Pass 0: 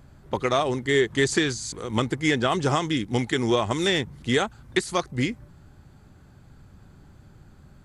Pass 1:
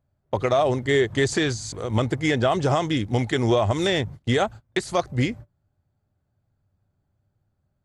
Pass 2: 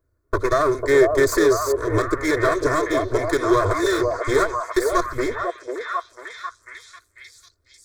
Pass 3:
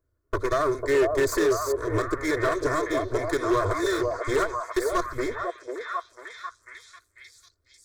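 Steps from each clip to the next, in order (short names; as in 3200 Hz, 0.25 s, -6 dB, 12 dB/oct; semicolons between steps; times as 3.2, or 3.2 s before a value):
gate -38 dBFS, range -26 dB; fifteen-band EQ 100 Hz +10 dB, 630 Hz +9 dB, 10000 Hz -4 dB; limiter -11 dBFS, peak gain reduction 5 dB
minimum comb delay 2.8 ms; fixed phaser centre 780 Hz, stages 6; delay with a stepping band-pass 0.496 s, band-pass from 590 Hz, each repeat 0.7 oct, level 0 dB; gain +6.5 dB
hard clip -11.5 dBFS, distortion -19 dB; gain -5 dB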